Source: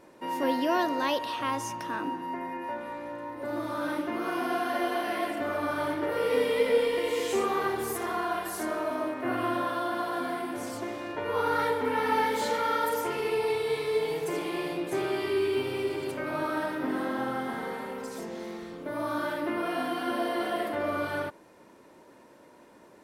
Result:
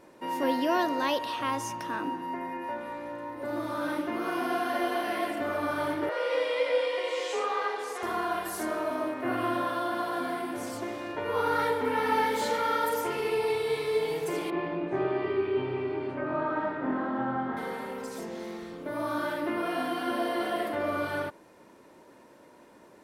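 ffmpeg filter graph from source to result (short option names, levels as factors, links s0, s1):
-filter_complex "[0:a]asettb=1/sr,asplit=3[s0][s1][s2];[s0]atrim=end=6.094[s3];[s1]atrim=start=6.09:end=8.03,asetpts=PTS-STARTPTS,afade=t=in:d=0.004:c=qsin,afade=t=out:st=1.936:d=0.004:c=qsin,highpass=170,acrossover=split=370 7700:gain=0.0708 1 0.0708[s4][s5][s6];[s4][s5][s6]amix=inputs=3:normalize=0,afreqshift=32[s7];[s2]atrim=start=8.026[s8];[s3][s7]acrossfade=d=0.004:c1=hsin:c2=qsin[s9];[s9][s8]acrossfade=d=0.004:c1=qsin:c2=hsin,asettb=1/sr,asplit=3[s10][s11][s12];[s10]atrim=end=14.504[s13];[s11]atrim=start=14.5:end=17.57,asetpts=PTS-STARTPTS,afade=t=in:d=0.004:c=qsin,afade=t=out:st=3.066:d=0.004:c=qsin,lowpass=1700,asplit=2[s14][s15];[s15]adelay=24,volume=0.708[s16];[s14][s16]amix=inputs=2:normalize=0,atrim=end_sample=135387[s17];[s12]atrim=start=17.566[s18];[s13][s17]acrossfade=d=0.004:c1=hsin:c2=qsin[s19];[s19][s18]acrossfade=d=0.004:c1=qsin:c2=hsin"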